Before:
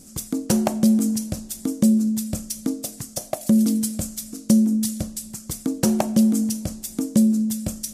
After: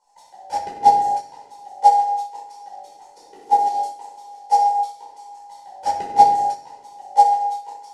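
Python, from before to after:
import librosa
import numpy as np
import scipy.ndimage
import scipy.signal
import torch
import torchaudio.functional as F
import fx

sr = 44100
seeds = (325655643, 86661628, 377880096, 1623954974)

y = fx.band_invert(x, sr, width_hz=1000)
y = scipy.signal.sosfilt(scipy.signal.butter(2, 5500.0, 'lowpass', fs=sr, output='sos'), y)
y = fx.low_shelf(y, sr, hz=300.0, db=-8.0)
y = fx.echo_split(y, sr, split_hz=810.0, low_ms=261, high_ms=664, feedback_pct=52, wet_db=-9.5)
y = fx.room_shoebox(y, sr, seeds[0], volume_m3=620.0, walls='mixed', distance_m=4.8)
y = fx.upward_expand(y, sr, threshold_db=-14.0, expansion=2.5)
y = y * librosa.db_to_amplitude(-4.5)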